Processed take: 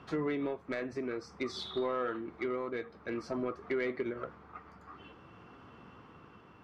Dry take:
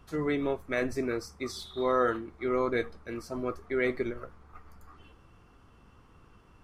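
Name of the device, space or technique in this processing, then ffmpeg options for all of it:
AM radio: -af "highpass=140,lowpass=3500,acompressor=threshold=0.0141:ratio=6,asoftclip=type=tanh:threshold=0.0282,tremolo=f=0.53:d=0.3,volume=2.37"

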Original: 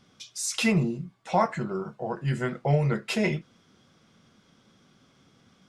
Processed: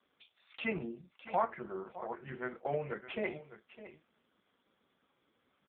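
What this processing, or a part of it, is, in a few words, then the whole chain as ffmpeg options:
satellite phone: -af "highpass=340,lowpass=3300,aecho=1:1:609:0.188,volume=0.501" -ar 8000 -c:a libopencore_amrnb -b:a 5150

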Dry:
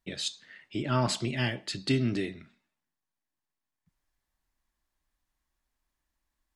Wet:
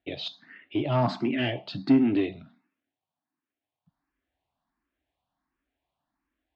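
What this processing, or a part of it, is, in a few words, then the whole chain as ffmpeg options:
barber-pole phaser into a guitar amplifier: -filter_complex "[0:a]asplit=2[s0][s1];[s1]afreqshift=1.4[s2];[s0][s2]amix=inputs=2:normalize=1,asoftclip=type=tanh:threshold=0.0596,highpass=79,equalizer=f=280:t=q:w=4:g=9,equalizer=f=710:t=q:w=4:g=8,equalizer=f=1900:t=q:w=4:g=-4,lowpass=f=3500:w=0.5412,lowpass=f=3500:w=1.3066,volume=1.88"

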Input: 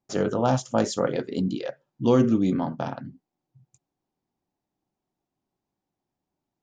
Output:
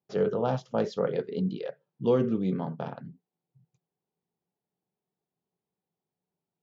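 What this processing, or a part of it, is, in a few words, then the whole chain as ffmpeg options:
guitar cabinet: -af "highpass=91,equalizer=f=170:t=q:w=4:g=9,equalizer=f=290:t=q:w=4:g=-7,equalizer=f=440:t=q:w=4:g=10,lowpass=f=4500:w=0.5412,lowpass=f=4500:w=1.3066,volume=0.447"

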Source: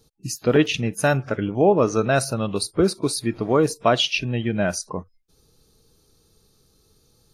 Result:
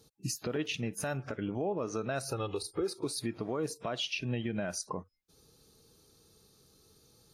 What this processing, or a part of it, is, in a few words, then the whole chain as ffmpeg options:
podcast mastering chain: -filter_complex "[0:a]asettb=1/sr,asplit=3[s0][s1][s2];[s0]atrim=end=2.284[s3];[s1]atrim=start=2.28:end=3.05,asetpts=PTS-STARTPTS,afade=t=in:d=0.004:c=qsin,afade=t=out:st=0.766:d=0.004:c=qsin,aecho=1:1:2.4:0.78,atrim=end_sample=33957[s4];[s2]atrim=start=3.046[s5];[s3][s4]acrossfade=d=0.004:c1=hsin:c2=qsin[s6];[s6][s5]acrossfade=d=0.004:c1=qsin:c2=hsin,highpass=f=100:p=1,deesser=0.45,acompressor=threshold=0.0562:ratio=2,alimiter=limit=0.075:level=0:latency=1:release=297,volume=0.891" -ar 44100 -c:a libmp3lame -b:a 96k

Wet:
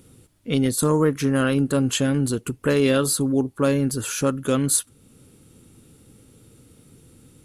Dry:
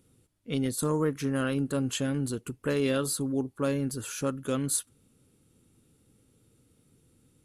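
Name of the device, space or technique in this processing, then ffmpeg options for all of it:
parallel compression: -filter_complex "[0:a]asplit=2[s0][s1];[s1]acompressor=threshold=0.00447:ratio=6,volume=0.891[s2];[s0][s2]amix=inputs=2:normalize=0,volume=2.37"

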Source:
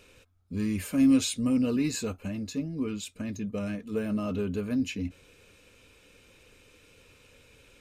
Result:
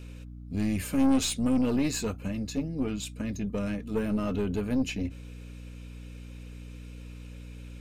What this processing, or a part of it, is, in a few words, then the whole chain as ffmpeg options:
valve amplifier with mains hum: -af "aeval=exprs='(tanh(14.1*val(0)+0.5)-tanh(0.5))/14.1':c=same,aeval=exprs='val(0)+0.00562*(sin(2*PI*60*n/s)+sin(2*PI*2*60*n/s)/2+sin(2*PI*3*60*n/s)/3+sin(2*PI*4*60*n/s)/4+sin(2*PI*5*60*n/s)/5)':c=same,volume=1.5"

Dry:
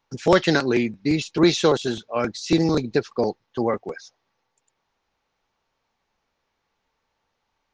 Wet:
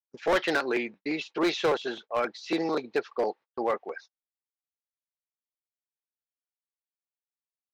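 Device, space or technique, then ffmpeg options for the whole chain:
walkie-talkie: -af "highpass=500,lowpass=2900,asoftclip=type=hard:threshold=0.119,agate=range=0.01:threshold=0.00631:ratio=16:detection=peak,volume=0.891"

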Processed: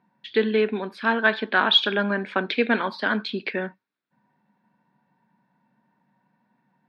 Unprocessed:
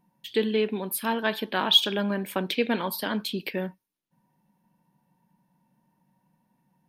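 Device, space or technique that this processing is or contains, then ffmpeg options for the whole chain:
kitchen radio: -af "highpass=170,equalizer=f=170:t=q:w=4:g=-9,equalizer=f=320:t=q:w=4:g=-6,equalizer=f=530:t=q:w=4:g=-5,equalizer=f=900:t=q:w=4:g=-4,equalizer=f=1500:t=q:w=4:g=6,equalizer=f=3000:t=q:w=4:g=-8,lowpass=f=3800:w=0.5412,lowpass=f=3800:w=1.3066,volume=2.11"

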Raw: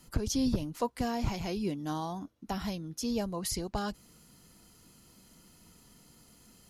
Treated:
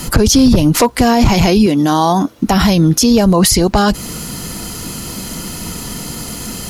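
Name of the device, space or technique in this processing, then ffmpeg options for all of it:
loud club master: -filter_complex "[0:a]acompressor=threshold=0.0126:ratio=1.5,asoftclip=type=hard:threshold=0.0422,alimiter=level_in=59.6:limit=0.891:release=50:level=0:latency=1,asettb=1/sr,asplit=3[s0][s1][s2];[s0]atrim=end=1.664[s3];[s1]atrim=start=1.66:end=2.39,asetpts=PTS-STARTPTS,afade=t=in:d=0.004:c=qsin,afade=t=out:st=0.726:d=0.004:c=qsin,highpass=f=240:p=1[s4];[s2]atrim=start=2.386[s5];[s3][s4]acrossfade=d=0.004:c1=hsin:c2=qsin[s6];[s6][s5]acrossfade=d=0.004:c1=qsin:c2=hsin,volume=0.794"

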